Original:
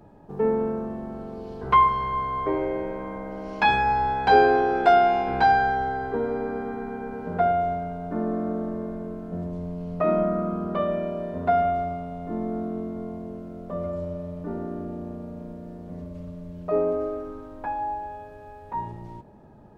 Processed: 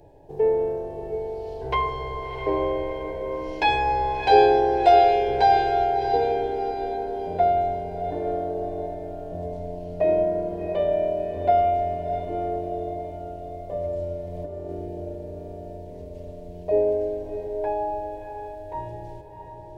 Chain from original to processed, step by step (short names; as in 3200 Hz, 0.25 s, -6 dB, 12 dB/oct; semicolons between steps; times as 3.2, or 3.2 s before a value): 14.27–14.69 negative-ratio compressor -35 dBFS, ratio -0.5; fixed phaser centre 520 Hz, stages 4; diffused feedback echo 0.681 s, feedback 41%, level -7 dB; gain +3.5 dB